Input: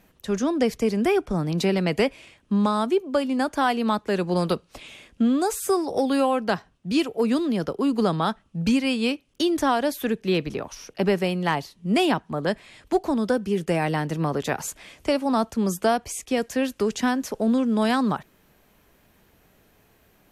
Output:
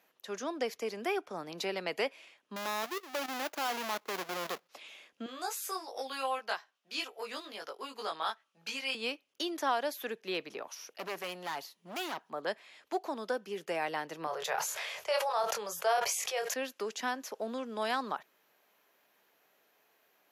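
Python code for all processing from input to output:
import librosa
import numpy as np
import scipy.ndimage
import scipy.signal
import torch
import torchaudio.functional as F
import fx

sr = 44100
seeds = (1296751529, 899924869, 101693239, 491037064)

y = fx.chain(x, sr, fx.halfwave_hold(),
    fx.level_steps(step_db=12), at=(2.56, 4.69))
y = fx.chain(y, sr, fx.highpass(hz=1200.0, slope=6),
    fx.doubler(ms=19.0, db=-2.0), at=(5.26, 8.95))
y = fx.chain(y, sr, fx.high_shelf(hz=9600.0, db=11.0),
    fx.overload_stage(gain_db=24.5), at=(10.67, 12.3))
y = fx.chain(y, sr, fx.cheby1_bandstop(low_hz=150.0, high_hz=470.0, order=2),
    fx.doubler(ms=24.0, db=-7.0),
    fx.sustainer(db_per_s=26.0), at=(14.27, 16.54))
y = scipy.signal.sosfilt(scipy.signal.butter(2, 530.0, 'highpass', fs=sr, output='sos'), y)
y = fx.peak_eq(y, sr, hz=8600.0, db=-11.0, octaves=0.25)
y = F.gain(torch.from_numpy(y), -7.0).numpy()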